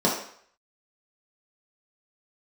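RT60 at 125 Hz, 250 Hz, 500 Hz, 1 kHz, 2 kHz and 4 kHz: 0.45, 0.50, 0.55, 0.60, 0.60, 0.55 s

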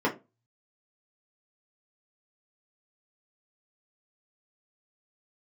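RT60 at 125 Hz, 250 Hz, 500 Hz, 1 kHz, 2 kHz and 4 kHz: 0.65, 0.30, 0.30, 0.20, 0.20, 0.15 s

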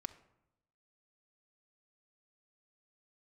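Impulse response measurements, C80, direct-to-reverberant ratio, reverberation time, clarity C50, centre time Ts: 17.5 dB, 6.5 dB, 0.85 s, 14.5 dB, 5 ms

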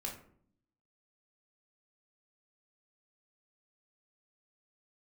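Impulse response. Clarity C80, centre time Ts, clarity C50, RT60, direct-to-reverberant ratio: 12.0 dB, 25 ms, 7.5 dB, 0.60 s, 0.0 dB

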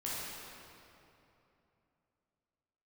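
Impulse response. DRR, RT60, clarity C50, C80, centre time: -8.0 dB, 3.0 s, -4.0 dB, -2.0 dB, 0.179 s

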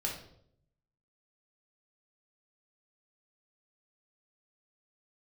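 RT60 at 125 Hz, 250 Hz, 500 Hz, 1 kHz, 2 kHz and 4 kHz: 1.1, 0.85, 0.80, 0.60, 0.50, 0.50 s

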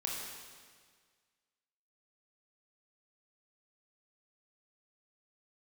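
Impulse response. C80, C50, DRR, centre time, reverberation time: 2.0 dB, 0.0 dB, -3.0 dB, 92 ms, 1.7 s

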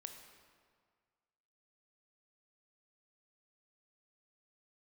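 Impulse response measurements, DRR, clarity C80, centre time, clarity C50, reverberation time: 5.0 dB, 7.5 dB, 36 ms, 6.0 dB, 1.8 s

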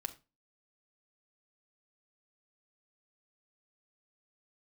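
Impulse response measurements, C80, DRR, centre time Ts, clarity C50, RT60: 22.0 dB, 5.5 dB, 5 ms, 16.0 dB, 0.30 s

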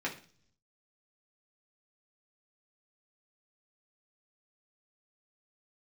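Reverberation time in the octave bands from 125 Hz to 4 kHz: 1.0, 0.75, 0.50, 0.40, 0.40, 0.60 s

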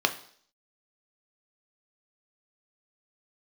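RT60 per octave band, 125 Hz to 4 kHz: 0.45, 0.55, 0.60, 0.55, 0.55, 0.65 s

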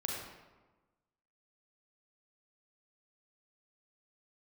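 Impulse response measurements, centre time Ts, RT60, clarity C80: 71 ms, 1.2 s, 2.5 dB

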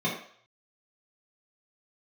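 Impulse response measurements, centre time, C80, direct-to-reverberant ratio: 34 ms, 9.0 dB, -7.0 dB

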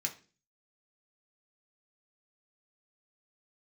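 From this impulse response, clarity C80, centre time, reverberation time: 19.5 dB, 10 ms, 0.35 s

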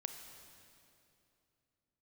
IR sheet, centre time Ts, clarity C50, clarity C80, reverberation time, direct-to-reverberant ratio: 45 ms, 6.5 dB, 7.5 dB, 2.7 s, 6.0 dB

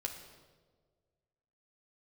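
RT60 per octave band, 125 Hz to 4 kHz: 2.0, 1.7, 1.8, 1.3, 1.0, 1.0 s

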